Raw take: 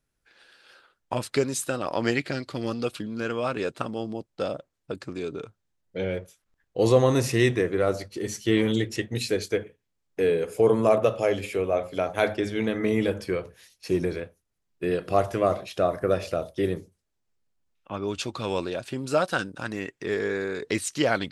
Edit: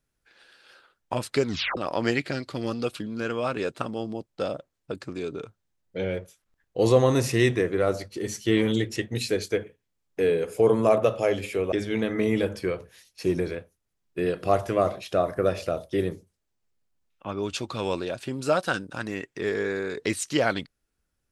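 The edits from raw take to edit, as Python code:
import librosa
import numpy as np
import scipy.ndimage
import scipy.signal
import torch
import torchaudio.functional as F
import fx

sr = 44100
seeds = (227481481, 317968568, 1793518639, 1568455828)

y = fx.edit(x, sr, fx.tape_stop(start_s=1.44, length_s=0.33),
    fx.cut(start_s=11.72, length_s=0.65), tone=tone)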